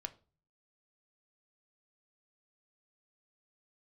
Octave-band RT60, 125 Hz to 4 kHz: 0.70, 0.50, 0.40, 0.35, 0.30, 0.30 s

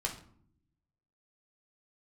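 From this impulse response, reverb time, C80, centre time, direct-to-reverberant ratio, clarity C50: 0.60 s, 14.0 dB, 17 ms, 0.0 dB, 9.5 dB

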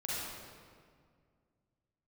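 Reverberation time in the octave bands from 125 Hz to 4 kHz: 2.8, 2.6, 2.1, 1.9, 1.6, 1.3 s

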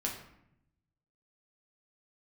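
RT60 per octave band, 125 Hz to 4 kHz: 1.4, 1.1, 0.80, 0.75, 0.70, 0.50 s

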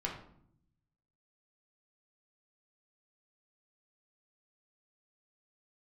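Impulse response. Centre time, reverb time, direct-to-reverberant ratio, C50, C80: 29 ms, 0.65 s, -2.0 dB, 6.0 dB, 9.5 dB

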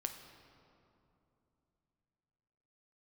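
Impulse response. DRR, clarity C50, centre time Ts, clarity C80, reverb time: 5.0 dB, 7.5 dB, 34 ms, 8.5 dB, 2.9 s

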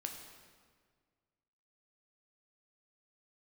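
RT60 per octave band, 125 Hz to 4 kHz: 2.1, 2.0, 1.8, 1.7, 1.5, 1.3 s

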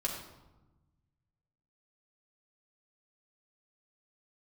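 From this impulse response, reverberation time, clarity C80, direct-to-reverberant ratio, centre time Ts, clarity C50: 1.1 s, 6.5 dB, -3.5 dB, 39 ms, 4.0 dB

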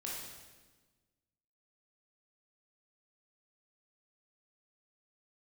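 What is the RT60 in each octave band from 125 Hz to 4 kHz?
1.8, 1.7, 1.4, 1.2, 1.2, 1.2 s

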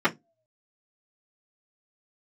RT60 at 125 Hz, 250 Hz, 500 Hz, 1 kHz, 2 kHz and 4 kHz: 0.25, 0.25, 0.25, 0.15, 0.15, 0.15 s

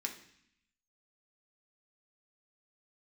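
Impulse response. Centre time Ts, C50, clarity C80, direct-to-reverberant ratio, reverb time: 15 ms, 10.0 dB, 13.0 dB, 1.5 dB, 0.65 s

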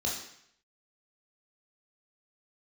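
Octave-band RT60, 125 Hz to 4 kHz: 0.75, 0.65, 0.70, 0.70, 0.75, 0.70 s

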